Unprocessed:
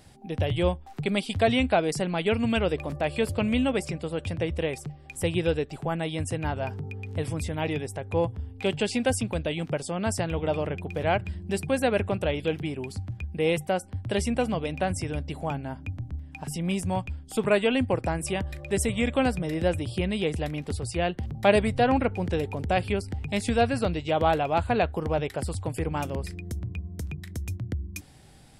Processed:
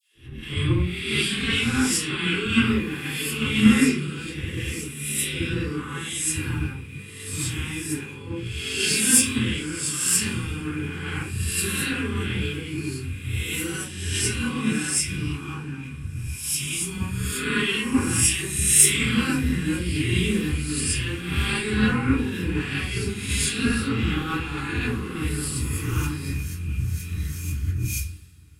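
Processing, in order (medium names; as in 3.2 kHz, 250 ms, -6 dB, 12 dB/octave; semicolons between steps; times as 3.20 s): reverse spectral sustain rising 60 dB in 1.27 s; high-pass 130 Hz 6 dB/octave; treble shelf 6.4 kHz +10.5 dB; in parallel at -1.5 dB: peak limiter -16 dBFS, peak gain reduction 11.5 dB; on the sum: slow attack 165 ms; phase dispersion lows, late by 143 ms, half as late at 790 Hz; saturation -5.5 dBFS, distortion -28 dB; Butterworth band-stop 640 Hz, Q 0.69; on a send: echo that smears into a reverb 1391 ms, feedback 45%, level -15 dB; on the sum: simulated room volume 35 m³, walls mixed, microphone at 2.6 m; three bands expanded up and down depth 100%; trim -15.5 dB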